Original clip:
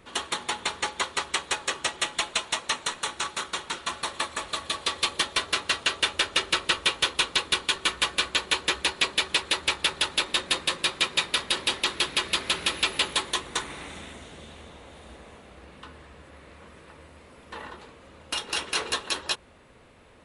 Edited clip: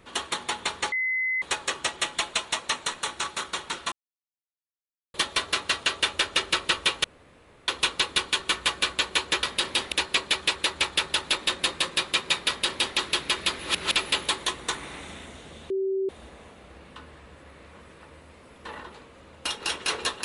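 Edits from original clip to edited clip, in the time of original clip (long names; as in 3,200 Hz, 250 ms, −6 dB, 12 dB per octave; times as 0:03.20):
0:00.92–0:01.42: beep over 2,040 Hz −23.5 dBFS
0:03.92–0:05.14: silence
0:07.04: splice in room tone 0.64 s
0:11.35–0:11.84: duplicate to 0:08.79
0:12.46–0:12.82: reverse
0:14.57–0:14.96: beep over 385 Hz −23.5 dBFS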